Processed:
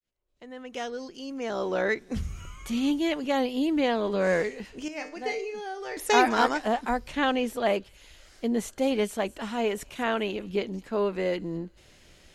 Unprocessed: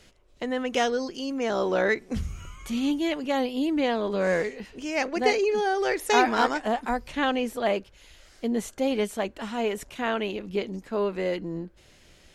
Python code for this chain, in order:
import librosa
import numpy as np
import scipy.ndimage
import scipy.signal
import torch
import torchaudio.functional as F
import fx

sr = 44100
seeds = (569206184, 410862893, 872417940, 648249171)

y = fx.fade_in_head(x, sr, length_s=2.56)
y = fx.comb_fb(y, sr, f0_hz=150.0, decay_s=0.38, harmonics='all', damping=0.0, mix_pct=80, at=(4.88, 5.97))
y = fx.echo_wet_highpass(y, sr, ms=205, feedback_pct=37, hz=5400.0, wet_db=-14)